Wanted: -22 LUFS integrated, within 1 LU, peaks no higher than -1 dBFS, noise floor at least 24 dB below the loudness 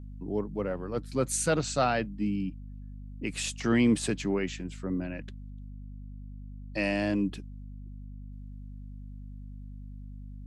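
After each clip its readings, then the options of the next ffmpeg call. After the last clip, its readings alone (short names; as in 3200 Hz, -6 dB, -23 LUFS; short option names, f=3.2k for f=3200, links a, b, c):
hum 50 Hz; harmonics up to 250 Hz; hum level -40 dBFS; loudness -30.0 LUFS; peak -14.0 dBFS; loudness target -22.0 LUFS
-> -af "bandreject=f=50:t=h:w=6,bandreject=f=100:t=h:w=6,bandreject=f=150:t=h:w=6,bandreject=f=200:t=h:w=6,bandreject=f=250:t=h:w=6"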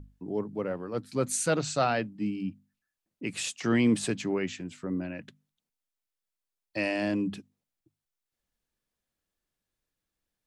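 hum none; loudness -30.5 LUFS; peak -14.0 dBFS; loudness target -22.0 LUFS
-> -af "volume=8.5dB"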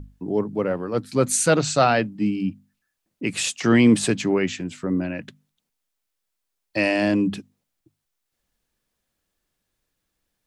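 loudness -22.0 LUFS; peak -5.5 dBFS; noise floor -79 dBFS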